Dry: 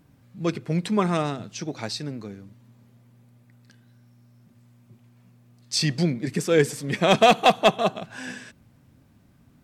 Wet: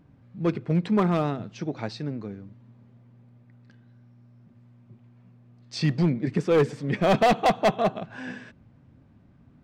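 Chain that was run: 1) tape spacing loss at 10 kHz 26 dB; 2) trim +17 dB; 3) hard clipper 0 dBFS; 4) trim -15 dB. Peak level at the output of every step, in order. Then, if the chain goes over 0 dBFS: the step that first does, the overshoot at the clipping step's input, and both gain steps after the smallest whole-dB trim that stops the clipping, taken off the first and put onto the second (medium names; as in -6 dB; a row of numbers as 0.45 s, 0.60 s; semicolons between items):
-7.5 dBFS, +9.5 dBFS, 0.0 dBFS, -15.0 dBFS; step 2, 9.5 dB; step 2 +7 dB, step 4 -5 dB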